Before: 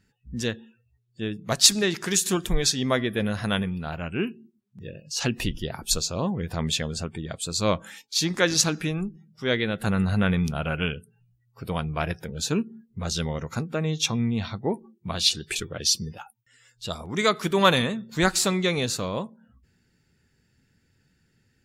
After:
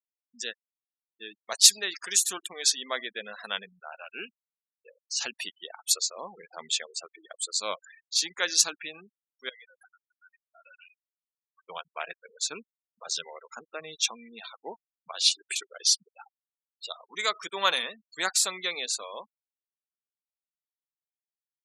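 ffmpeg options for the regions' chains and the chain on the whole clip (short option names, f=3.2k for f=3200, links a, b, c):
-filter_complex "[0:a]asettb=1/sr,asplit=3[a][b][c];[a]atrim=end=9.494[d];[b]atrim=start=9.49:end=11.66,asetpts=PTS-STARTPTS,afade=t=in:d=0.004:c=qsin,afade=t=out:st=2.166:d=0.004:c=qsin,equalizer=f=2.6k:t=o:w=1.3:g=4,acompressor=threshold=-38dB:ratio=8:attack=3.2:release=140:knee=1:detection=peak[e];[c]atrim=start=11.656[f];[d][e]acrossfade=d=0.004:c1=hsin:c2=qsin[g];[g][f]acrossfade=d=0.004:c1=qsin:c2=hsin,highpass=660,afftfilt=real='re*gte(hypot(re,im),0.0224)':imag='im*gte(hypot(re,im),0.0224)':win_size=1024:overlap=0.75,highshelf=f=3.3k:g=8,volume=-6dB"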